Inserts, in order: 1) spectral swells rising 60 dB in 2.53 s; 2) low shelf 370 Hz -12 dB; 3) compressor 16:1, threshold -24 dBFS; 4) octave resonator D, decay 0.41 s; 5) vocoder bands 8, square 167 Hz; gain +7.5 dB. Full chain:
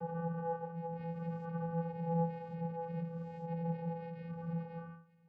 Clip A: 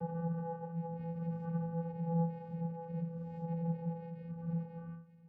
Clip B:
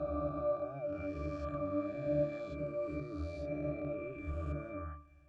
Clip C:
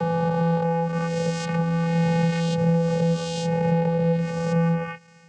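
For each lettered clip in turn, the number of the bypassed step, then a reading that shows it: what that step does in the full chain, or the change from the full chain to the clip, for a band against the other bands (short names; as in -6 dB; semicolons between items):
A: 2, 1 kHz band -6.0 dB; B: 5, momentary loudness spread change -1 LU; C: 4, 2 kHz band +6.0 dB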